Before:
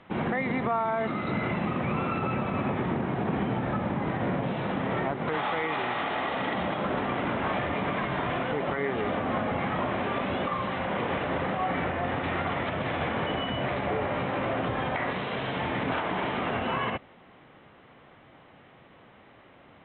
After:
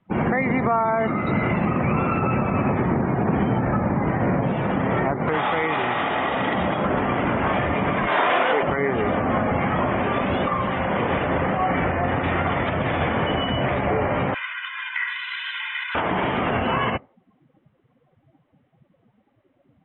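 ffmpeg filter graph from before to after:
ffmpeg -i in.wav -filter_complex "[0:a]asettb=1/sr,asplit=3[link_01][link_02][link_03];[link_01]atrim=end=8.074[link_04];[link_02]atrim=start=8.07:end=8.63,asetpts=PTS-STARTPTS,afade=type=in:duration=0.004:curve=qsin,afade=type=out:start_time=0.556:duration=0.004:curve=qsin,highpass=480,acontrast=42[link_05];[link_03]atrim=start=8.626[link_06];[link_04][link_05]acrossfade=duration=0.004:curve1=hsin:curve2=qsin[link_07];[link_07][link_06]acrossfade=duration=0.004:curve1=qsin:curve2=hsin,asettb=1/sr,asplit=3[link_08][link_09][link_10];[link_08]atrim=end=14.344[link_11];[link_09]atrim=start=14.34:end=15.95,asetpts=PTS-STARTPTS,afade=type=in:duration=0.004:curve=qsin,afade=type=out:start_time=1.606:duration=0.004:curve=qsin,highpass=frequency=1500:width=0.5412,highpass=frequency=1500:width=1.3066,aecho=1:1:2:0.89,atrim=end_sample=71001[link_12];[link_10]atrim=start=15.946[link_13];[link_11][link_12]acrossfade=duration=0.004:curve1=hsin:curve2=qsin[link_14];[link_14][link_13]acrossfade=duration=0.004:curve1=qsin:curve2=hsin,afftdn=noise_reduction=25:noise_floor=-42,lowshelf=frequency=77:gain=7.5,volume=6.5dB" out.wav

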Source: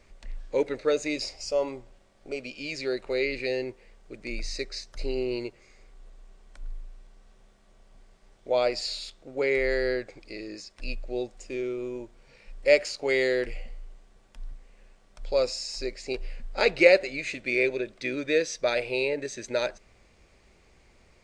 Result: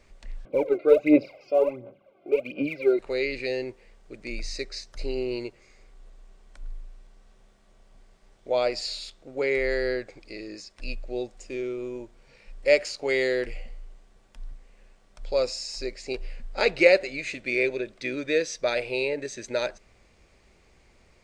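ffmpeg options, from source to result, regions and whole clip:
ffmpeg -i in.wav -filter_complex "[0:a]asettb=1/sr,asplit=3[link_01][link_02][link_03];[link_01]atrim=end=0.454[link_04];[link_02]atrim=start=0.45:end=2.99,asetpts=PTS-STARTPTS,afade=type=in:duration=0.004:curve=qsin,afade=type=out:start_time=2.536:duration=0.004:curve=qsin,highpass=frequency=130:width=0.5412,highpass=frequency=130:width=1.3066,equalizer=frequency=300:width_type=q:width=4:gain=5,equalizer=frequency=560:width_type=q:width=4:gain=9,equalizer=frequency=930:width_type=q:width=4:gain=-7,equalizer=frequency=1400:width_type=q:width=4:gain=-3,lowpass=frequency=2500:width=0.5412,lowpass=frequency=2500:width=1.3066,aphaser=in_gain=1:out_gain=1:delay=2.9:decay=0.75:speed=1.4:type=sinusoidal,asuperstop=centerf=1800:order=20:qfactor=4.5[link_05];[link_03]atrim=start=2.986[link_06];[link_04][link_05]acrossfade=duration=0.004:curve1=hsin:curve2=qsin[link_07];[link_07][link_06]acrossfade=duration=0.004:curve1=qsin:curve2=hsin" out.wav

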